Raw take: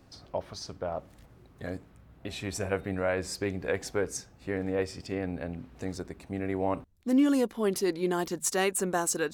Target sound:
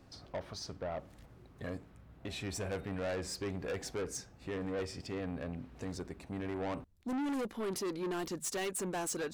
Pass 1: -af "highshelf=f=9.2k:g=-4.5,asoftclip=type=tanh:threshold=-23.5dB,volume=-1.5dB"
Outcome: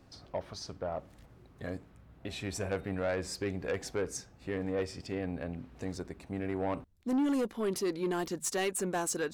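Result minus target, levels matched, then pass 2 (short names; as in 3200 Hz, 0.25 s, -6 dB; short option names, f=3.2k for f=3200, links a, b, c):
soft clip: distortion -7 dB
-af "highshelf=f=9.2k:g=-4.5,asoftclip=type=tanh:threshold=-31.5dB,volume=-1.5dB"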